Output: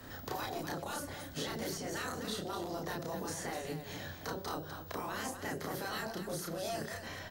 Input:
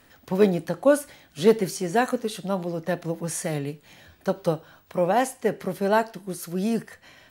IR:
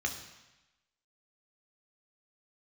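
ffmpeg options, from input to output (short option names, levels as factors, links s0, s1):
-filter_complex "[0:a]equalizer=f=100:t=o:w=0.67:g=8,equalizer=f=2500:t=o:w=0.67:g=-8,equalizer=f=10000:t=o:w=0.67:g=-8,afftfilt=real='re*lt(hypot(re,im),0.158)':imag='im*lt(hypot(re,im),0.158)':win_size=1024:overlap=0.75,acrossover=split=480[s0][s1];[s1]alimiter=level_in=2.24:limit=0.0631:level=0:latency=1:release=468,volume=0.447[s2];[s0][s2]amix=inputs=2:normalize=0,acrossover=split=160|3900[s3][s4][s5];[s3]acompressor=threshold=0.00112:ratio=4[s6];[s4]acompressor=threshold=0.00501:ratio=4[s7];[s5]acompressor=threshold=0.00224:ratio=4[s8];[s6][s7][s8]amix=inputs=3:normalize=0,aecho=1:1:32.07|250.7:0.891|0.398,volume=1.88"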